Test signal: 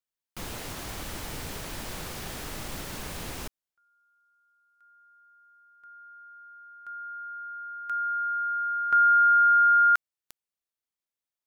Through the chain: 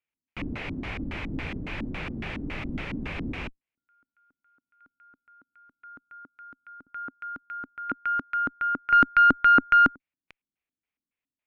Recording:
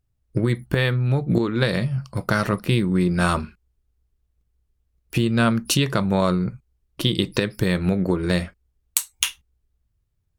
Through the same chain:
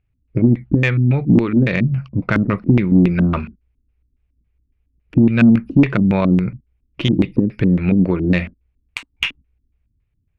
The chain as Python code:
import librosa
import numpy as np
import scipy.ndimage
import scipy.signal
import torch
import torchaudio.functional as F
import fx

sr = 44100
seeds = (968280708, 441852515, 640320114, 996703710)

y = fx.filter_lfo_lowpass(x, sr, shape='square', hz=3.6, low_hz=270.0, high_hz=2400.0, q=4.2)
y = fx.cheby_harmonics(y, sr, harmonics=(5, 6), levels_db=(-26, -29), full_scale_db=1.0)
y = fx.low_shelf(y, sr, hz=430.0, db=5.0)
y = y * librosa.db_to_amplitude(-2.5)